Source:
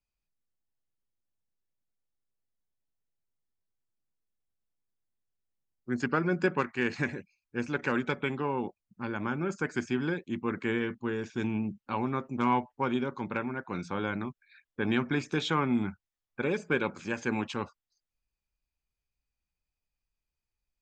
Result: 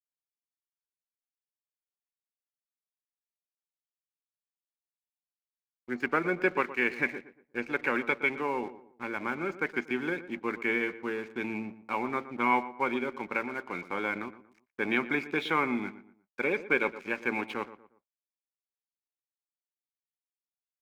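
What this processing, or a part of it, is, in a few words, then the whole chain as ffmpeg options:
pocket radio on a weak battery: -filter_complex "[0:a]highpass=300,lowpass=3100,aeval=exprs='sgn(val(0))*max(abs(val(0))-0.00224,0)':channel_layout=same,equalizer=frequency=2200:width_type=o:width=0.25:gain=11,asplit=2[link_01][link_02];[link_02]adelay=118,lowpass=frequency=1700:poles=1,volume=-14dB,asplit=2[link_03][link_04];[link_04]adelay=118,lowpass=frequency=1700:poles=1,volume=0.36,asplit=2[link_05][link_06];[link_06]adelay=118,lowpass=frequency=1700:poles=1,volume=0.36[link_07];[link_01][link_03][link_05][link_07]amix=inputs=4:normalize=0,volume=1.5dB"

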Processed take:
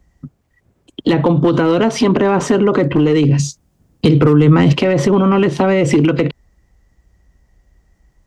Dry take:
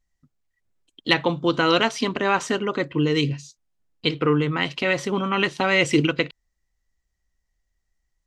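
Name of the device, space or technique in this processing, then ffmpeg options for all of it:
mastering chain: -filter_complex "[0:a]highpass=47,equalizer=frequency=4000:width_type=o:width=0.23:gain=-2.5,acrossover=split=160|600[link_01][link_02][link_03];[link_01]acompressor=threshold=-42dB:ratio=4[link_04];[link_02]acompressor=threshold=-25dB:ratio=4[link_05];[link_03]acompressor=threshold=-27dB:ratio=4[link_06];[link_04][link_05][link_06]amix=inputs=3:normalize=0,acompressor=threshold=-29dB:ratio=1.5,asoftclip=type=tanh:threshold=-18dB,tiltshelf=frequency=1200:gain=8,asoftclip=type=hard:threshold=-16.5dB,alimiter=level_in=25dB:limit=-1dB:release=50:level=0:latency=1,asettb=1/sr,asplit=3[link_07][link_08][link_09];[link_07]atrim=end=3.394[link_10];[link_08]atrim=start=3.39:end=4.73,asetpts=PTS-STARTPTS,afade=type=in:duration=0.004:curve=qsin,afade=type=out:start_time=1.336:duration=0.004:curve=qsin,bass=frequency=250:gain=6,treble=frequency=4000:gain=7[link_11];[link_09]atrim=start=4.726[link_12];[link_10][link_11]acrossfade=duration=0.004:curve1=hsin:curve2=qsin[link_13];[link_13][link_12]acrossfade=duration=0.004:curve1=qsin:curve2=hsin,volume=-5dB"

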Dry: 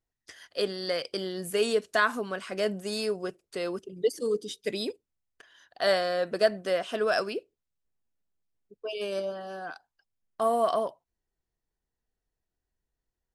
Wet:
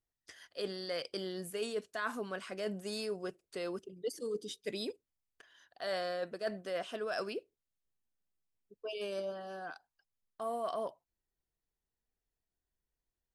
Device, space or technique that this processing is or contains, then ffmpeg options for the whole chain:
compression on the reversed sound: -af "areverse,acompressor=threshold=-28dB:ratio=6,areverse,volume=-5.5dB"

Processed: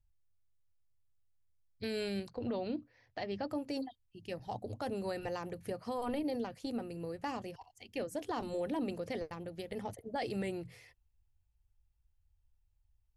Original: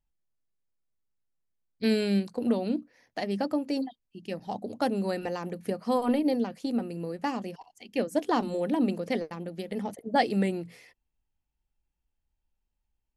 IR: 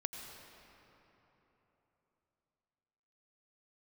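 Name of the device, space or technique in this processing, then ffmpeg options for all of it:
car stereo with a boomy subwoofer: -filter_complex "[0:a]lowshelf=frequency=140:width_type=q:width=3:gain=11,alimiter=limit=-24dB:level=0:latency=1:release=22,asettb=1/sr,asplit=3[link_01][link_02][link_03];[link_01]atrim=end=2.294[link_04];[link_02]atrim=start=2.29:end=3.49,asetpts=PTS-STARTPTS,afade=type=in:duration=0.004:curve=qsin,afade=type=out:start_time=1.196:duration=0.004:curve=qsin,lowpass=frequency=5000:width=0.5412,lowpass=frequency=5000:width=1.3066[link_05];[link_03]atrim=start=3.486[link_06];[link_04][link_05]acrossfade=duration=0.004:curve1=hsin:curve2=qsin[link_07];[link_07][link_06]acrossfade=duration=0.004:curve1=qsin:curve2=hsin,volume=-4.5dB"

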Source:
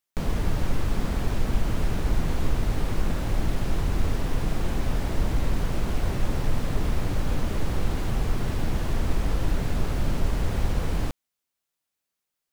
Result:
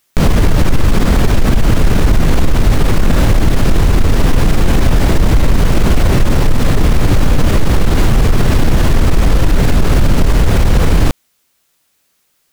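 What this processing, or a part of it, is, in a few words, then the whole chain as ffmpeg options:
mastering chain: -af "equalizer=frequency=820:width_type=o:width=0.77:gain=-2,acompressor=threshold=-23dB:ratio=2,asoftclip=type=tanh:threshold=-18dB,alimiter=level_in=24.5dB:limit=-1dB:release=50:level=0:latency=1,volume=-1.5dB"

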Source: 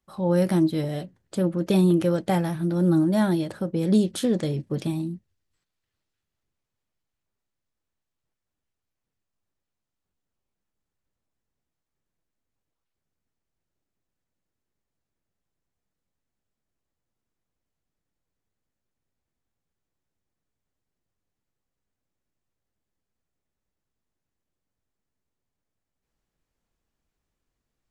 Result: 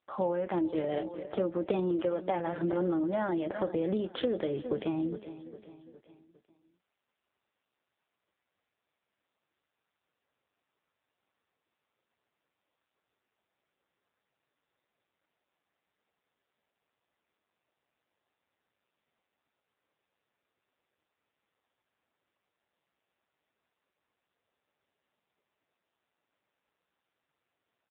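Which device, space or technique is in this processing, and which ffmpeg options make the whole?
voicemail: -filter_complex "[0:a]asettb=1/sr,asplit=3[link_01][link_02][link_03];[link_01]atrim=end=0.474[link_04];[link_02]atrim=start=0.47:end=0.92,asetpts=PTS-STARTPTS,afade=type=in:duration=0.004:curve=qsin,afade=type=out:start_time=0.446:duration=0.004:curve=qsin,asubboost=boost=12:cutoff=55[link_05];[link_03]atrim=start=0.916[link_06];[link_04][link_05]acrossfade=duration=0.004:curve1=hsin:curve2=qsin[link_07];[link_07][link_06]acrossfade=duration=0.004:curve1=qsin:curve2=hsin,highpass=420,lowpass=2800,aecho=1:1:407|814|1221|1628:0.133|0.0613|0.0282|0.013,acompressor=threshold=-34dB:ratio=10,volume=8dB" -ar 8000 -c:a libopencore_amrnb -b:a 5900

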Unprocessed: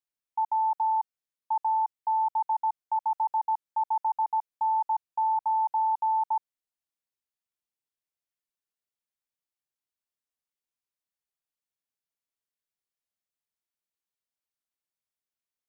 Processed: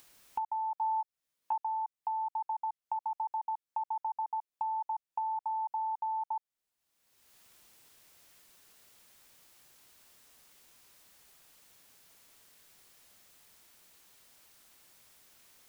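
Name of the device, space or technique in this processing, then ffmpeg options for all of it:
upward and downward compression: -filter_complex "[0:a]acompressor=mode=upward:threshold=-47dB:ratio=2.5,acompressor=threshold=-40dB:ratio=6,asettb=1/sr,asplit=3[link_01][link_02][link_03];[link_01]atrim=end=0.754[link_04];[link_02]atrim=start=0.75:end=1.56,asetpts=PTS-STARTPTS,afade=type=in:duration=0.004:curve=qsin,afade=type=out:start_time=0.806:duration=0.004:curve=qsin,asplit=2[link_05][link_06];[link_06]adelay=15,volume=-3dB[link_07];[link_05][link_07]amix=inputs=2:normalize=0,atrim=end_sample=35721[link_08];[link_03]atrim=start=1.556[link_09];[link_04][link_08]acrossfade=duration=0.004:curve1=hsin:curve2=qsin[link_10];[link_10][link_09]acrossfade=duration=0.004:curve1=qsin:curve2=hsin,volume=6dB"

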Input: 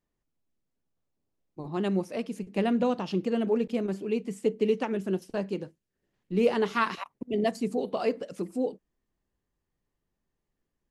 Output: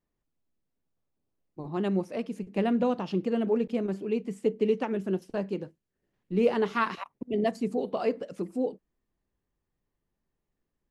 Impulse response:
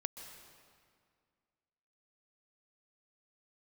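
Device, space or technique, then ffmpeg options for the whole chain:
behind a face mask: -af "highshelf=frequency=3500:gain=-7"

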